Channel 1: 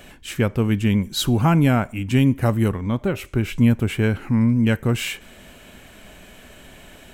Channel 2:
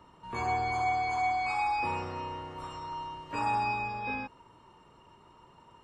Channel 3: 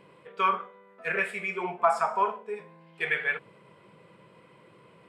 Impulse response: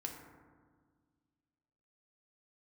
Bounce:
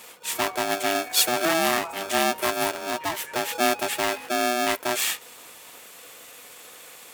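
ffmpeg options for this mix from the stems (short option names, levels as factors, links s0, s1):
-filter_complex "[0:a]crystalizer=i=3:c=0,aeval=exprs='val(0)*sgn(sin(2*PI*490*n/s))':c=same,volume=0.596[s0];[1:a]alimiter=level_in=2.51:limit=0.0631:level=0:latency=1,volume=0.398,volume=0.944[s1];[2:a]volume=0.158[s2];[s0][s1][s2]amix=inputs=3:normalize=0,highpass=f=470:p=1"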